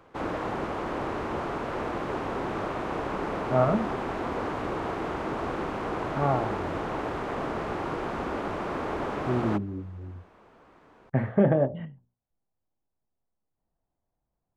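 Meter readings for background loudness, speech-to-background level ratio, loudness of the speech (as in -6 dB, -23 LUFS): -32.0 LUFS, 4.5 dB, -27.5 LUFS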